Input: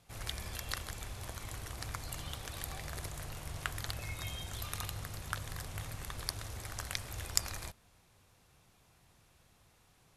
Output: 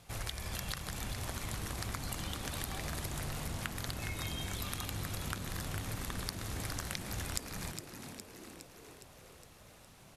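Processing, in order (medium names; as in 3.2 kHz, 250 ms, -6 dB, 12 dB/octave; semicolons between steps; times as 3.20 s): compression, threshold -43 dBFS, peak gain reduction 19 dB; frequency-shifting echo 412 ms, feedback 62%, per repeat +86 Hz, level -8 dB; trim +7 dB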